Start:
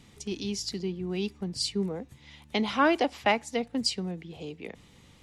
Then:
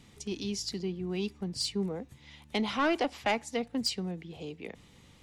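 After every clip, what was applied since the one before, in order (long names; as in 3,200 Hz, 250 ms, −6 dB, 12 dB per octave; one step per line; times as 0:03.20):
soft clipping −19 dBFS, distortion −14 dB
level −1.5 dB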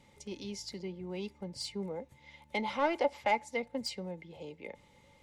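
hollow resonant body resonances 560/870/2,100 Hz, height 16 dB, ringing for 55 ms
level −7.5 dB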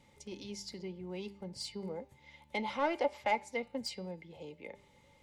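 hum removal 199 Hz, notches 26
level −2 dB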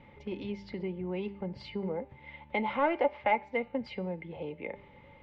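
low-pass filter 2,700 Hz 24 dB per octave
in parallel at +2 dB: downward compressor, threshold −44 dBFS, peak gain reduction 17 dB
on the sum: level +2.5 dB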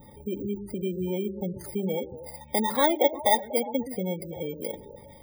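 samples in bit-reversed order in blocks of 16 samples
echo through a band-pass that steps 120 ms, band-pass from 300 Hz, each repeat 0.7 octaves, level −9 dB
gate on every frequency bin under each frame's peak −20 dB strong
level +6 dB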